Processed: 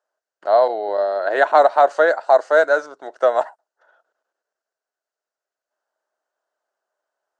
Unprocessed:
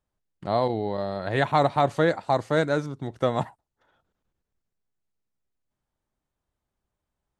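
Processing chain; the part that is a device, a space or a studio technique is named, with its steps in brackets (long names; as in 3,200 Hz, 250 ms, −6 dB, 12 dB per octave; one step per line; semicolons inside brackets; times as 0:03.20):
phone speaker on a table (loudspeaker in its box 440–7,600 Hz, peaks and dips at 640 Hz +9 dB, 1,500 Hz +9 dB, 2,300 Hz −8 dB, 3,500 Hz −7 dB)
0:00.88–0:01.62: parametric band 330 Hz +7 dB 0.56 octaves
level +4.5 dB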